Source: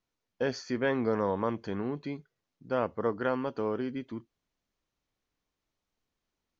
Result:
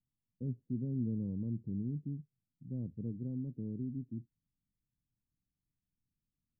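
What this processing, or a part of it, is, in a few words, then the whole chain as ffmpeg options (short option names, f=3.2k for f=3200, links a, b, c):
the neighbour's flat through the wall: -af "lowpass=f=250:w=0.5412,lowpass=f=250:w=1.3066,equalizer=f=130:t=o:w=0.86:g=7.5,volume=-2.5dB"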